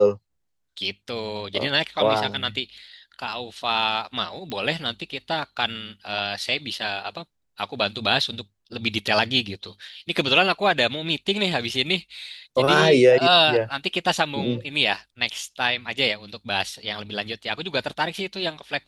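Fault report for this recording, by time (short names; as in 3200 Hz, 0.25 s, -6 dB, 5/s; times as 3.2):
4.5 pop -18 dBFS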